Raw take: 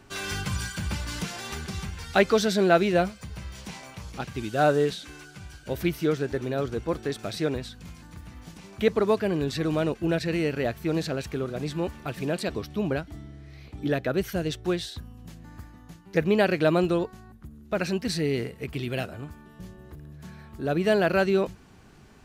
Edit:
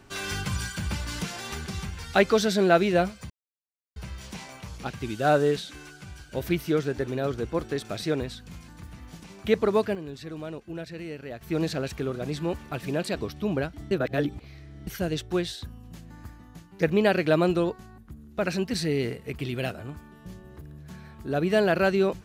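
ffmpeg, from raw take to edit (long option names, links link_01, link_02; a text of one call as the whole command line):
ffmpeg -i in.wav -filter_complex "[0:a]asplit=6[link_01][link_02][link_03][link_04][link_05][link_06];[link_01]atrim=end=3.3,asetpts=PTS-STARTPTS,afade=type=out:start_time=3.296:duration=0.004:curve=hsin,apad=pad_dur=0.66[link_07];[link_02]atrim=start=3.3:end=9.29,asetpts=PTS-STARTPTS,afade=type=in:duration=0.004:curve=hsin,afade=type=out:start_time=5.73:duration=0.26:curve=log:silence=0.281838[link_08];[link_03]atrim=start=9.29:end=10.75,asetpts=PTS-STARTPTS,volume=-11dB[link_09];[link_04]atrim=start=10.75:end=13.252,asetpts=PTS-STARTPTS,afade=type=in:duration=0.26:curve=log:silence=0.281838[link_10];[link_05]atrim=start=13.248:end=14.212,asetpts=PTS-STARTPTS,areverse[link_11];[link_06]atrim=start=14.208[link_12];[link_07][link_08][link_09][link_10]concat=n=4:v=0:a=1[link_13];[link_13][link_11]acrossfade=duration=0.004:curve1=hsin:curve2=hsin[link_14];[link_14][link_12]acrossfade=duration=0.004:curve1=hsin:curve2=hsin" out.wav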